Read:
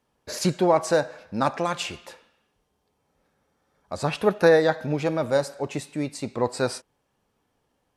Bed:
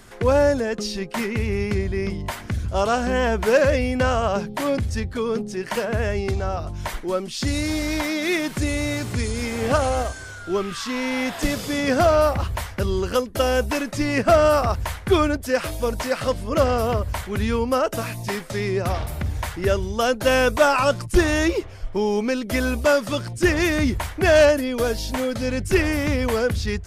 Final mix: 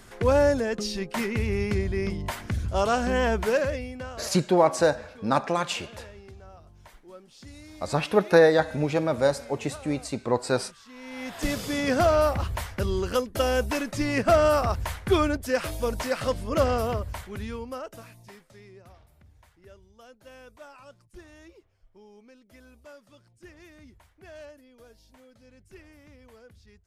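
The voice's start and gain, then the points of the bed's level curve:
3.90 s, 0.0 dB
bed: 3.36 s -3 dB
4.31 s -22.5 dB
10.85 s -22.5 dB
11.5 s -4 dB
16.74 s -4 dB
19.1 s -30.5 dB

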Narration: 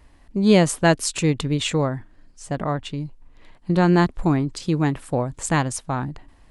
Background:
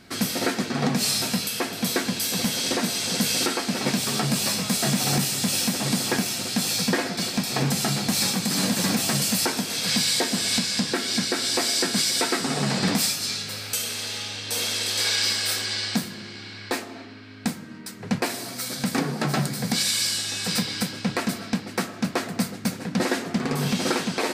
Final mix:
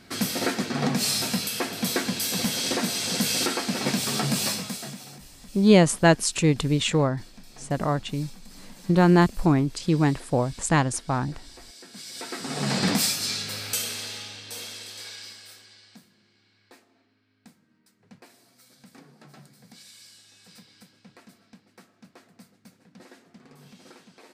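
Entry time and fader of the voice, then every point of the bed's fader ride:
5.20 s, -0.5 dB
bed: 4.47 s -1.5 dB
5.2 s -24.5 dB
11.79 s -24.5 dB
12.73 s -0.5 dB
13.77 s -0.5 dB
15.83 s -26 dB

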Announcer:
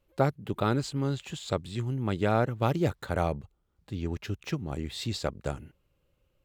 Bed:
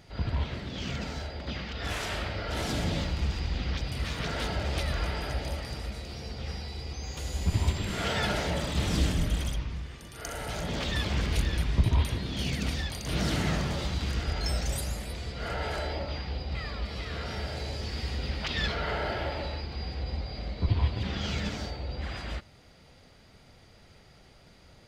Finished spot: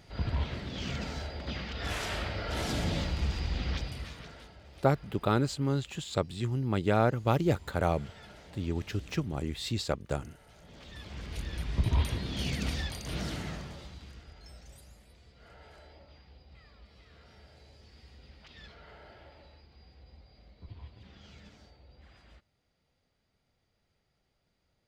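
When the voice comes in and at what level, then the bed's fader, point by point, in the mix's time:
4.65 s, 0.0 dB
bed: 3.77 s -1.5 dB
4.54 s -22.5 dB
10.58 s -22.5 dB
11.97 s -2 dB
12.86 s -2 dB
14.34 s -21.5 dB

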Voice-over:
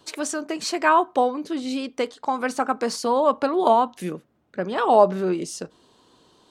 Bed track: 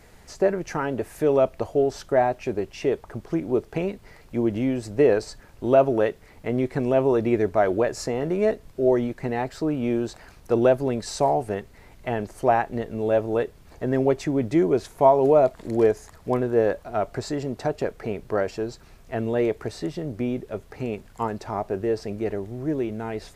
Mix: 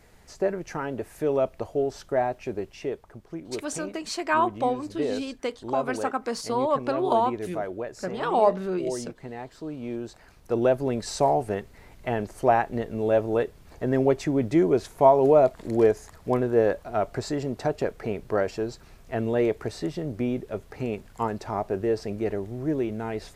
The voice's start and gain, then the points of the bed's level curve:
3.45 s, -5.0 dB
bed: 2.64 s -4.5 dB
3.21 s -11 dB
9.61 s -11 dB
11.05 s -0.5 dB

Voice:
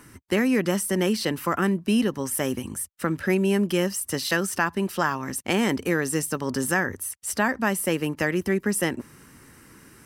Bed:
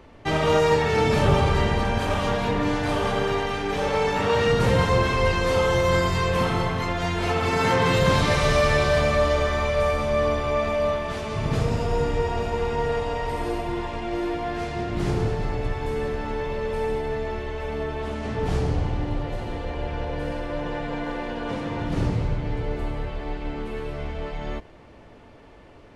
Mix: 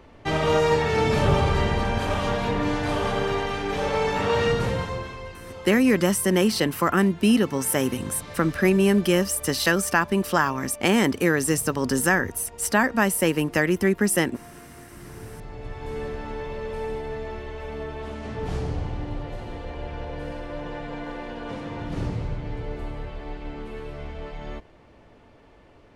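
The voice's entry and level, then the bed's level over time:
5.35 s, +3.0 dB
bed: 4.47 s -1 dB
5.36 s -19 dB
15.07 s -19 dB
15.96 s -4.5 dB

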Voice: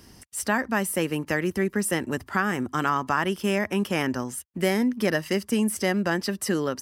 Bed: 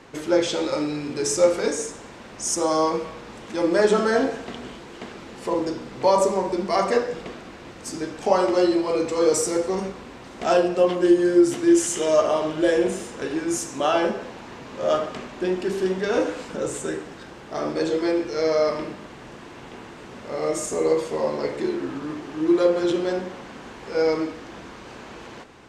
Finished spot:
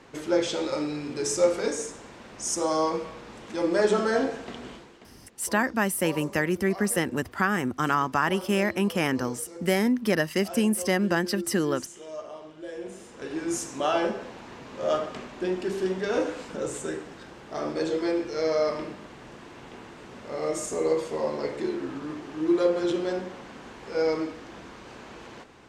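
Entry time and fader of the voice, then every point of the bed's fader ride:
5.05 s, 0.0 dB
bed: 4.75 s -4 dB
5.13 s -19.5 dB
12.66 s -19.5 dB
13.45 s -4 dB

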